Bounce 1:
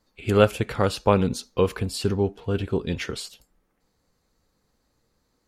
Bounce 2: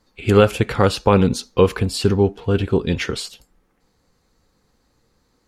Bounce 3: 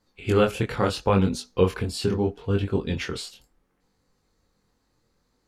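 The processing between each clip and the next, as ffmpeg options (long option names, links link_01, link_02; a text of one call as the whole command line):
ffmpeg -i in.wav -af "highshelf=frequency=11000:gain=-7,bandreject=frequency=620:width=12,alimiter=level_in=8dB:limit=-1dB:release=50:level=0:latency=1,volume=-1dB" out.wav
ffmpeg -i in.wav -af "flanger=delay=20:depth=4.7:speed=0.74,volume=-3.5dB" out.wav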